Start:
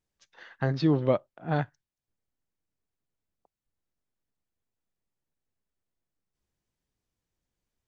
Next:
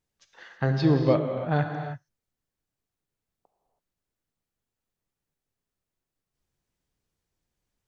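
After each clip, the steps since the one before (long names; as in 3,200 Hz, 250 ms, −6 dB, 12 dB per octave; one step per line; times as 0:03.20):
reverb whose tail is shaped and stops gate 350 ms flat, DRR 4 dB
level +1.5 dB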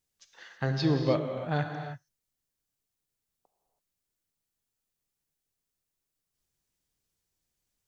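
high-shelf EQ 3,200 Hz +11 dB
level −5 dB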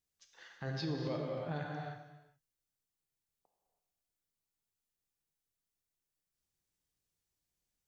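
brickwall limiter −23 dBFS, peak gain reduction 8.5 dB
reverb whose tail is shaped and stops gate 450 ms falling, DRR 6.5 dB
level −6.5 dB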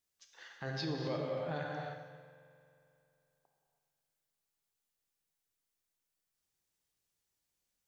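low-shelf EQ 260 Hz −7 dB
spring reverb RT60 2.8 s, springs 44 ms, chirp 25 ms, DRR 12 dB
level +2.5 dB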